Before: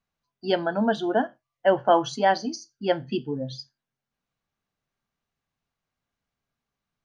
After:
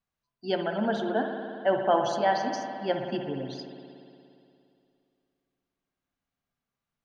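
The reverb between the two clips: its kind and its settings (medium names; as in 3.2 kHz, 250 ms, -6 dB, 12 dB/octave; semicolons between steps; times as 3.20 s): spring tank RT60 2.6 s, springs 58 ms, chirp 60 ms, DRR 3.5 dB; trim -5 dB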